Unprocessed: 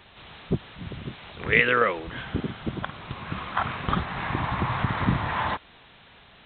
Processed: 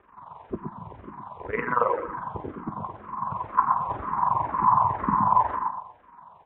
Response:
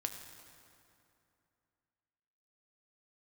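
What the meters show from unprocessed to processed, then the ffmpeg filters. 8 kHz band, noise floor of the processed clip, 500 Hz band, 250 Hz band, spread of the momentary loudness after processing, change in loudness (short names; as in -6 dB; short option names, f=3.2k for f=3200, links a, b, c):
n/a, -54 dBFS, -2.0 dB, -4.5 dB, 18 LU, +1.0 dB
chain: -filter_complex "[0:a]lowshelf=f=81:g=-8,tremolo=f=22:d=0.824,lowpass=f=1k:t=q:w=9.8,aecho=1:1:119|238|357|476:0.501|0.16|0.0513|0.0164,asplit=2[a][b];[1:a]atrim=start_sample=2205,asetrate=88200,aresample=44100,adelay=19[c];[b][c]afir=irnorm=-1:irlink=0,volume=-6dB[d];[a][d]amix=inputs=2:normalize=0,asplit=2[e][f];[f]afreqshift=-2[g];[e][g]amix=inputs=2:normalize=1"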